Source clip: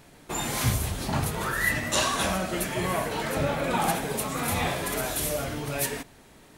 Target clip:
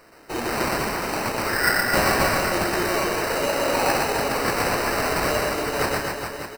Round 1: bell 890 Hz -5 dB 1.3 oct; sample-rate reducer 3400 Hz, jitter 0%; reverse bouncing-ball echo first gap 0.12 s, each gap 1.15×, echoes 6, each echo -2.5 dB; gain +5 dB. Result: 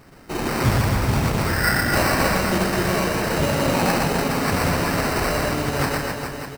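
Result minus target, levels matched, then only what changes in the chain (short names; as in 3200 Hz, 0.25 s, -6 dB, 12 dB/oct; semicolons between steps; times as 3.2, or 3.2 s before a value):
250 Hz band +4.0 dB
add first: HPF 320 Hz 24 dB/oct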